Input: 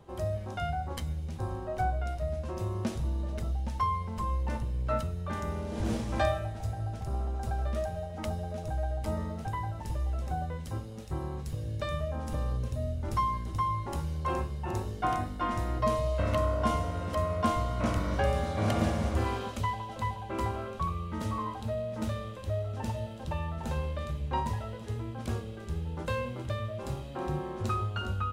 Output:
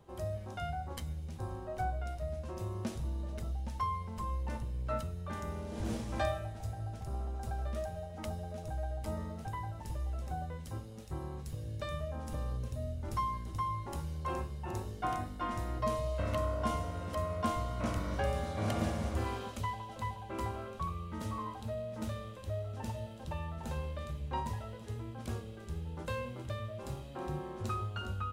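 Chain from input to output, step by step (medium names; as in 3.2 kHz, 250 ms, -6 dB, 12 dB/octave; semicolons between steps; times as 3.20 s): treble shelf 7.2 kHz +4.5 dB; trim -5.5 dB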